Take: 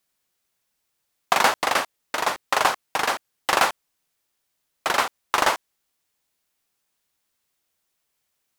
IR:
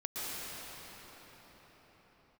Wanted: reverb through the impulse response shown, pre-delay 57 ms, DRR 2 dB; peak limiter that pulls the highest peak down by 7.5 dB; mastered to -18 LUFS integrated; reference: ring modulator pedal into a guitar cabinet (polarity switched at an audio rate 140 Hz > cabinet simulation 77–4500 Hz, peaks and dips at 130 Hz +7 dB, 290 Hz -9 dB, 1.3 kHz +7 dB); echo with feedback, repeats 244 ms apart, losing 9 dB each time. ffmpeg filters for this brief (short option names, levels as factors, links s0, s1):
-filter_complex "[0:a]alimiter=limit=0.335:level=0:latency=1,aecho=1:1:244|488|732|976:0.355|0.124|0.0435|0.0152,asplit=2[s0][s1];[1:a]atrim=start_sample=2205,adelay=57[s2];[s1][s2]afir=irnorm=-1:irlink=0,volume=0.447[s3];[s0][s3]amix=inputs=2:normalize=0,aeval=exprs='val(0)*sgn(sin(2*PI*140*n/s))':c=same,highpass=77,equalizer=f=130:t=q:w=4:g=7,equalizer=f=290:t=q:w=4:g=-9,equalizer=f=1300:t=q:w=4:g=7,lowpass=f=4500:w=0.5412,lowpass=f=4500:w=1.3066,volume=1.68"